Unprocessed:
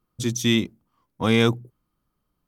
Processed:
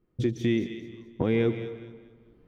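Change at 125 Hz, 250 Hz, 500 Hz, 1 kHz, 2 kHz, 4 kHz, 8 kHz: -4.5 dB, -4.5 dB, -2.0 dB, -11.0 dB, -10.0 dB, -16.0 dB, under -20 dB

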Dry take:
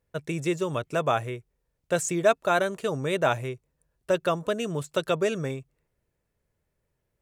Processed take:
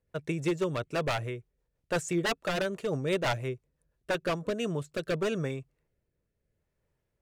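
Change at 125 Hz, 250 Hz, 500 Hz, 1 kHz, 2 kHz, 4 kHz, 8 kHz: -1.5, -2.0, -5.5, -7.5, -3.5, -1.5, -7.0 dB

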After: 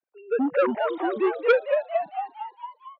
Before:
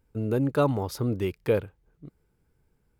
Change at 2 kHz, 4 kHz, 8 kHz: +10.5 dB, +2.0 dB, under -20 dB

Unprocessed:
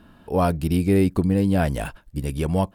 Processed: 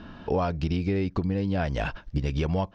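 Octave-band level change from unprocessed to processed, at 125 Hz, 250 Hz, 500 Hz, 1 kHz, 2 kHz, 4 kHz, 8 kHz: -4.5 dB, -7.0 dB, -5.5 dB, -5.0 dB, -2.0 dB, -1.5 dB, under -10 dB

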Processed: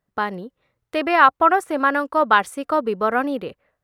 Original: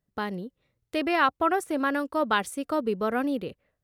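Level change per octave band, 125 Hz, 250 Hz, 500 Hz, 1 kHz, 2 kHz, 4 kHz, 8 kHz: n/a, +2.5 dB, +6.0 dB, +10.0 dB, +8.5 dB, +3.5 dB, +0.5 dB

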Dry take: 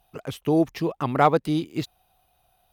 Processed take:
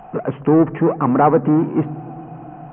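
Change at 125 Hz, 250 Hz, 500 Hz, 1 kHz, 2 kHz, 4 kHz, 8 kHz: +8.0 dB, +9.0 dB, +7.0 dB, +5.5 dB, +1.5 dB, under -10 dB, n/a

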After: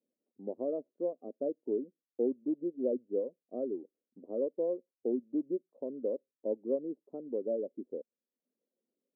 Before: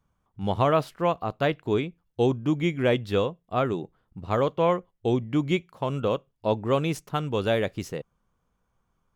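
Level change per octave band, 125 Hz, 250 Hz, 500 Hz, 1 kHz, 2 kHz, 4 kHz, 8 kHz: under -30 dB, -8.5 dB, -8.0 dB, -27.0 dB, under -40 dB, under -40 dB, n/a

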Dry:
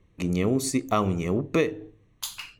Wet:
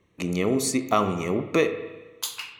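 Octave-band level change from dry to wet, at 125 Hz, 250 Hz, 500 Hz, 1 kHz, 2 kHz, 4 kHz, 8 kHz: -3.0, 0.0, +2.0, +3.0, +3.5, +3.0, +3.0 dB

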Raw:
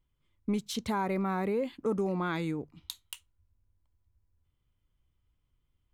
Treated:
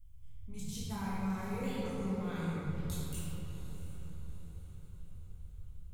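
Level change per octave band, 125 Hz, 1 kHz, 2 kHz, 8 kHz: +1.0, -9.0, -7.0, -0.5 dB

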